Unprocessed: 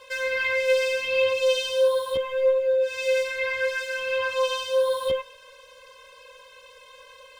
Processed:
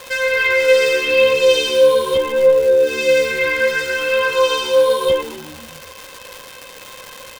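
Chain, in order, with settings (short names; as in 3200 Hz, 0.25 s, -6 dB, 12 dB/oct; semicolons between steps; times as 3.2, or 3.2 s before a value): frequency-shifting echo 0.128 s, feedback 63%, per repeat -74 Hz, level -17 dB; crackle 460/s -32 dBFS; gain +9 dB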